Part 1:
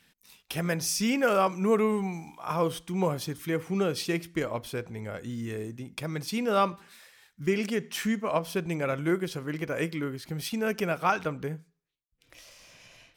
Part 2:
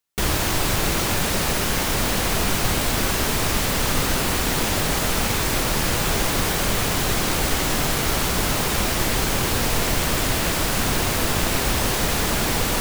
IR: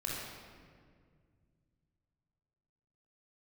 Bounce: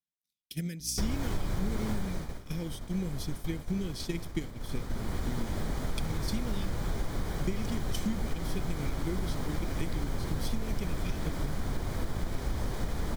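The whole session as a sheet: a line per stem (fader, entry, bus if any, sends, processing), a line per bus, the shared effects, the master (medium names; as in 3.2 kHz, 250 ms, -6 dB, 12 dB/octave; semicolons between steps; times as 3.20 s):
-3.0 dB, 0.00 s, no send, Chebyshev band-stop 260–3000 Hz, order 2; transient shaper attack +8 dB, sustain +4 dB
1.91 s -10.5 dB -> 2.39 s -21.5 dB -> 4.56 s -21.5 dB -> 5.24 s -13 dB, 0.80 s, no send, tilt EQ -2.5 dB/octave; hum 60 Hz, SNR 20 dB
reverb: none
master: band-stop 2.7 kHz, Q 5.5; expander -28 dBFS; compression 3:1, threshold -28 dBFS, peak gain reduction 9 dB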